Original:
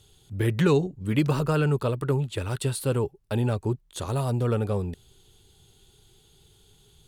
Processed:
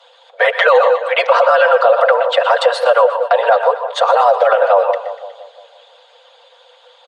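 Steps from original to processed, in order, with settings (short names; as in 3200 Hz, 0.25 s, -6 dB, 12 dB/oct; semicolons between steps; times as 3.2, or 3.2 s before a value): steep high-pass 410 Hz 96 dB/oct; dynamic EQ 2300 Hz, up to -4 dB, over -50 dBFS, Q 3.4; comb 4.6 ms, depth 93%; non-linear reverb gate 0.17 s rising, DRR 11 dB; frequency shift +83 Hz; harmonic-percussive split harmonic -16 dB; tape spacing loss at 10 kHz 42 dB; split-band echo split 850 Hz, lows 0.172 s, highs 0.121 s, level -13.5 dB; maximiser +32.5 dB; gain -1 dB; Opus 96 kbps 48000 Hz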